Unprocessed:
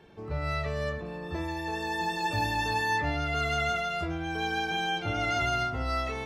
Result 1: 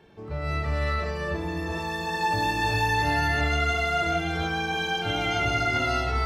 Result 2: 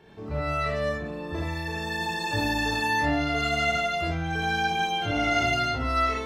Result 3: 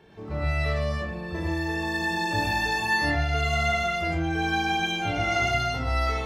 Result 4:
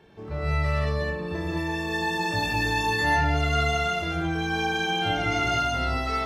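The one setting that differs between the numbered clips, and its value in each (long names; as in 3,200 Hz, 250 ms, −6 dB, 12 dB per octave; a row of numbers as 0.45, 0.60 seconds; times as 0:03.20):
reverb whose tail is shaped and stops, gate: 450, 100, 150, 240 milliseconds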